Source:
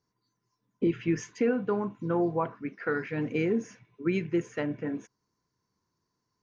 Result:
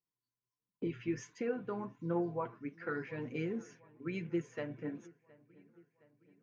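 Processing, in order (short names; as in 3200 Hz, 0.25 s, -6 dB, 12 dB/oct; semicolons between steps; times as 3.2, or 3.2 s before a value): gate -49 dBFS, range -11 dB; flange 1.4 Hz, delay 5.5 ms, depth 3.3 ms, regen +35%; on a send: dark delay 0.716 s, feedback 56%, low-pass 2800 Hz, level -23 dB; on the sum: gain -5 dB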